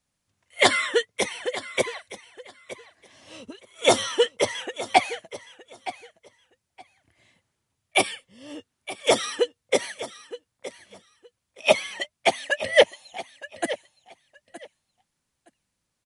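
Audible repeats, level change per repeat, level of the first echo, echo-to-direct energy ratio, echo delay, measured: 2, -15.0 dB, -15.0 dB, -15.0 dB, 0.918 s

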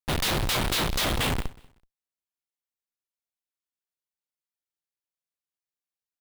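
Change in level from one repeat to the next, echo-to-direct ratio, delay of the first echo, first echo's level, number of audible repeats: no steady repeat, -23.0 dB, 0.189 s, -23.5 dB, 1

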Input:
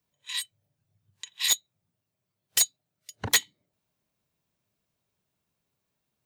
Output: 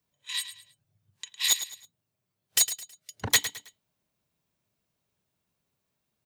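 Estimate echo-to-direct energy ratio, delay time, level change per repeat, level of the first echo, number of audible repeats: -11.5 dB, 0.107 s, -9.5 dB, -12.0 dB, 3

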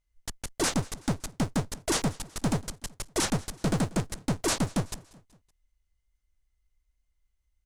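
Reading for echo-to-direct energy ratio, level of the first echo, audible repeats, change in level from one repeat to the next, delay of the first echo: -21.0 dB, -22.0 dB, 3, -6.0 dB, 0.188 s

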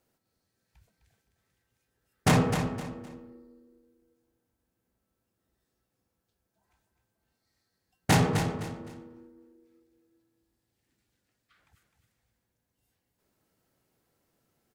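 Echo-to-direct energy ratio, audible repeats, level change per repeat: -7.5 dB, 3, -10.5 dB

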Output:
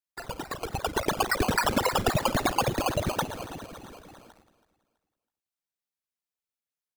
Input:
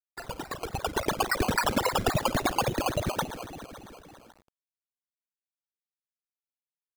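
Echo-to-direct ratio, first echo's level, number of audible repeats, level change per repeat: -16.5 dB, -17.0 dB, 2, -10.0 dB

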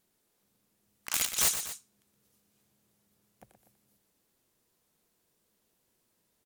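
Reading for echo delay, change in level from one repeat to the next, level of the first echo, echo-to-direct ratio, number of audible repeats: 0.121 s, -5.0 dB, -9.5 dB, -8.5 dB, 2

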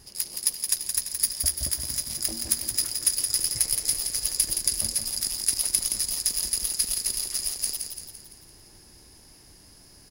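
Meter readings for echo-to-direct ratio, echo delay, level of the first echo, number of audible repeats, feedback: -4.5 dB, 0.17 s, -6.0 dB, 5, 51%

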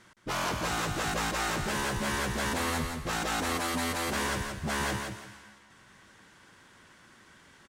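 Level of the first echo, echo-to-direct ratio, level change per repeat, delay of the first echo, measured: -5.5 dB, -5.5 dB, -12.5 dB, 0.168 s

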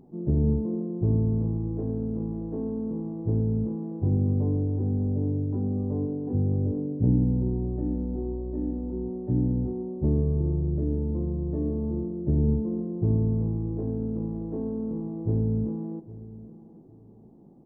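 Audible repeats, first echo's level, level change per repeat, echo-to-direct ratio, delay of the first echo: 2, -17.5 dB, -12.5 dB, -17.5 dB, 0.808 s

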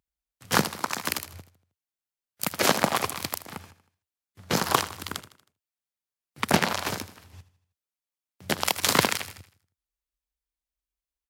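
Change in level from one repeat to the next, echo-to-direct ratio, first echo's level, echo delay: -6.5 dB, -14.5 dB, -15.5 dB, 79 ms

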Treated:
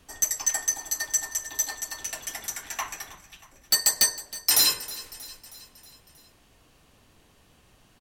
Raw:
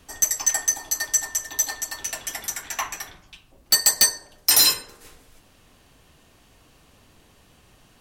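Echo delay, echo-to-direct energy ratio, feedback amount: 0.317 s, -16.0 dB, 57%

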